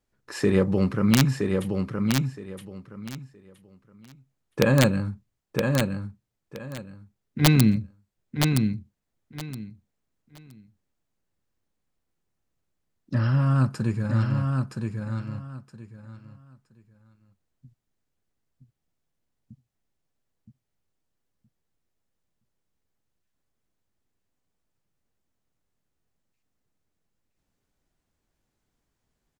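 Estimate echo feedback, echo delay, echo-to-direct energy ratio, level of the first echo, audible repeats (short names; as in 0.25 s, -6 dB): 21%, 0.969 s, -4.5 dB, -4.5 dB, 3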